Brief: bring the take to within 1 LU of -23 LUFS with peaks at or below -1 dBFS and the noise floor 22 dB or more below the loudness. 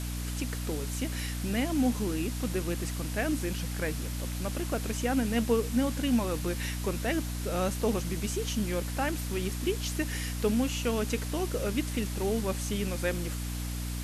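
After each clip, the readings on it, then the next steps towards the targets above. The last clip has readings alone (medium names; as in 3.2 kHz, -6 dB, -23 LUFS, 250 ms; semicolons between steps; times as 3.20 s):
hum 60 Hz; highest harmonic 300 Hz; hum level -32 dBFS; noise floor -35 dBFS; noise floor target -53 dBFS; loudness -31.0 LUFS; peak level -13.5 dBFS; loudness target -23.0 LUFS
-> hum notches 60/120/180/240/300 Hz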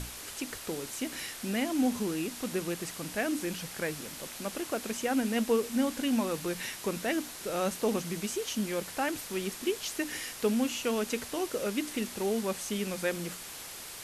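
hum not found; noise floor -44 dBFS; noise floor target -55 dBFS
-> noise reduction 11 dB, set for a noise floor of -44 dBFS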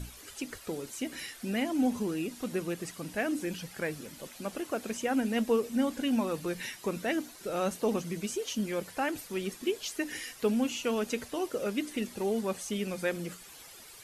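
noise floor -51 dBFS; noise floor target -55 dBFS
-> noise reduction 6 dB, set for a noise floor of -51 dBFS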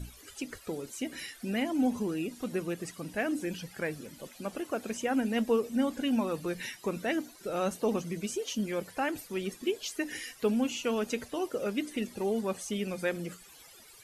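noise floor -54 dBFS; noise floor target -55 dBFS
-> noise reduction 6 dB, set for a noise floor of -54 dBFS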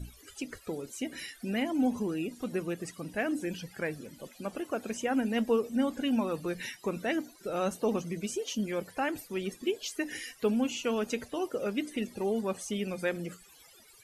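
noise floor -57 dBFS; loudness -33.0 LUFS; peak level -16.0 dBFS; loudness target -23.0 LUFS
-> trim +10 dB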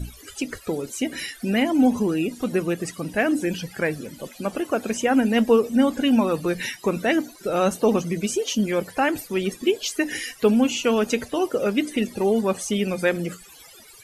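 loudness -23.0 LUFS; peak level -6.0 dBFS; noise floor -47 dBFS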